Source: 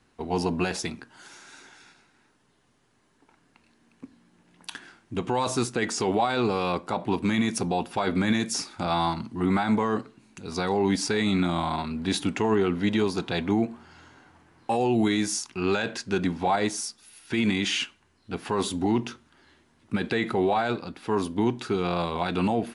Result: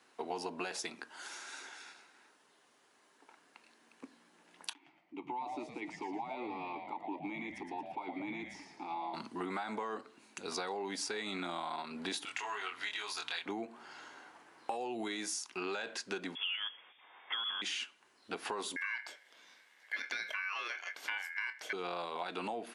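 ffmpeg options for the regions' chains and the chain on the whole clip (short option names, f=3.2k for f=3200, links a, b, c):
-filter_complex "[0:a]asettb=1/sr,asplit=3[a][b][c];[a]atrim=end=4.734[d];[b]atrim=start=4.73:end=9.14,asetpts=PTS-STARTPTS,afade=t=in:d=0.004:c=qsin,afade=t=out:st=4.406:d=0.004:c=qsin,asplit=3[e][f][g];[e]bandpass=f=300:t=q:w=8,volume=0dB[h];[f]bandpass=f=870:t=q:w=8,volume=-6dB[i];[g]bandpass=f=2.24k:t=q:w=8,volume=-9dB[j];[h][i][j]amix=inputs=3:normalize=0,asplit=6[k][l][m][n][o][p];[l]adelay=114,afreqshift=-140,volume=-5.5dB[q];[m]adelay=228,afreqshift=-280,volume=-13.2dB[r];[n]adelay=342,afreqshift=-420,volume=-21dB[s];[o]adelay=456,afreqshift=-560,volume=-28.7dB[t];[p]adelay=570,afreqshift=-700,volume=-36.5dB[u];[k][q][r][s][t][u]amix=inputs=6:normalize=0,atrim=end_sample=194481[v];[c]atrim=start=9.136[w];[d][v]acrossfade=d=0.004:c1=hsin:c2=qsin[x];[x][w]acrossfade=d=0.004:c1=qsin:c2=hsin,asettb=1/sr,asplit=3[y][z][aa];[y]atrim=end=12.254[ab];[z]atrim=start=12.25:end=13.46,asetpts=PTS-STARTPTS,afade=t=in:d=0.004:c=qsin,afade=t=out:st=1.206:d=0.004:c=qsin,highpass=1.3k,aeval=exprs='val(0)+0.00398*(sin(2*PI*60*n/s)+sin(2*PI*2*60*n/s)/2+sin(2*PI*3*60*n/s)/3+sin(2*PI*4*60*n/s)/4+sin(2*PI*5*60*n/s)/5)':c=same,asplit=2[ac][ad];[ad]adelay=24,volume=-2dB[ae];[ac][ae]amix=inputs=2:normalize=0,atrim=end_sample=53361[af];[aa]atrim=start=13.456[ag];[ab][af]acrossfade=d=0.004:c1=hsin:c2=qsin[ah];[ah][ag]acrossfade=d=0.004:c1=qsin:c2=hsin,asettb=1/sr,asplit=3[ai][aj][ak];[ai]atrim=end=16.354[al];[aj]atrim=start=16.35:end=17.62,asetpts=PTS-STARTPTS,afade=t=in:d=0.004:c=qsin,afade=t=out:st=1.266:d=0.004:c=qsin,equalizer=f=70:w=0.64:g=-11.5,lowpass=f=3.1k:t=q:w=0.5098,lowpass=f=3.1k:t=q:w=0.6013,lowpass=f=3.1k:t=q:w=0.9,lowpass=f=3.1k:t=q:w=2.563,afreqshift=-3600[am];[ak]atrim=start=17.616[an];[al][am]acrossfade=d=0.004:c1=hsin:c2=qsin[ao];[ao][an]acrossfade=d=0.004:c1=qsin:c2=hsin,asettb=1/sr,asplit=3[ap][aq][ar];[ap]atrim=end=18.764[as];[aq]atrim=start=18.76:end=21.73,asetpts=PTS-STARTPTS,afade=t=in:d=0.004:c=qsin,afade=t=out:st=2.966:d=0.004:c=qsin,aeval=exprs='val(0)*sin(2*PI*1900*n/s)':c=same,asplit=2[at][au];[au]adelay=25,volume=-12dB[av];[at][av]amix=inputs=2:normalize=0,atrim=end_sample=130977[aw];[ar]atrim=start=21.726[ax];[as][aw]acrossfade=d=0.004:c1=hsin:c2=qsin[ay];[ay][ax]acrossfade=d=0.004:c1=qsin:c2=hsin,highpass=440,acompressor=threshold=-38dB:ratio=6,volume=1.5dB"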